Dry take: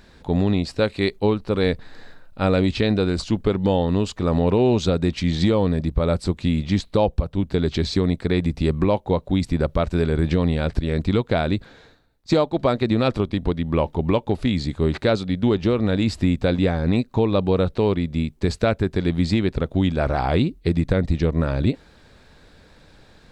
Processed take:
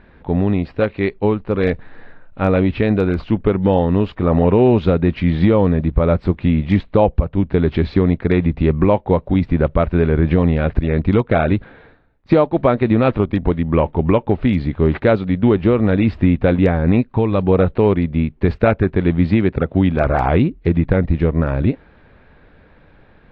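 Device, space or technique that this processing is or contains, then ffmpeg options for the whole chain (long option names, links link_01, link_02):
action camera in a waterproof case: -filter_complex "[0:a]asettb=1/sr,asplit=3[link_01][link_02][link_03];[link_01]atrim=end=17.024[link_04];[link_02]atrim=start=17.02:end=17.43,asetpts=PTS-STARTPTS,afade=type=in:duration=0.004:curve=qsin,afade=type=out:start_time=0.406:duration=0.004:curve=qsin,equalizer=frequency=460:width=0.47:gain=-4[link_05];[link_03]atrim=start=17.426[link_06];[link_04][link_05]acrossfade=duration=0.004:curve1=hsin:curve2=qsin[link_07];[link_07][link_06]acrossfade=duration=0.004:curve1=qsin:curve2=hsin,asettb=1/sr,asplit=3[link_08][link_09][link_10];[link_08]atrim=end=19.244[link_11];[link_09]atrim=start=19.24:end=20.04,asetpts=PTS-STARTPTS,afade=type=in:duration=0.004:curve=qsin,afade=type=out:start_time=0.796:duration=0.004:curve=qsin,highpass=66[link_12];[link_10]atrim=start=20.036[link_13];[link_11][link_12]acrossfade=duration=0.004:curve1=hsin:curve2=qsin[link_14];[link_14][link_13]acrossfade=duration=0.004:curve1=qsin:curve2=hsin,lowpass=frequency=2600:width=0.5412,lowpass=frequency=2600:width=1.3066,dynaudnorm=framelen=950:gausssize=7:maxgain=3dB,volume=3dB" -ar 32000 -c:a aac -b:a 48k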